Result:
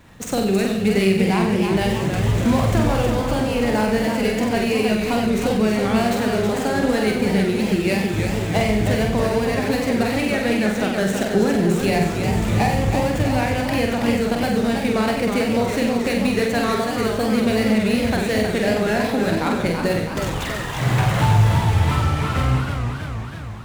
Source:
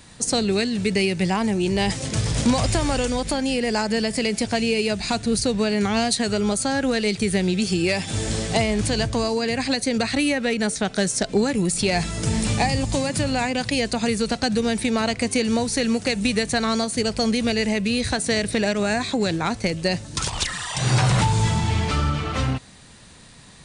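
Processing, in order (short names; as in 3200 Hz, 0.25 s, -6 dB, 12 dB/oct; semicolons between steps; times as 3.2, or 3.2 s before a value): median filter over 9 samples; flutter echo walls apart 8 m, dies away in 0.67 s; warbling echo 0.322 s, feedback 62%, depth 148 cents, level -6 dB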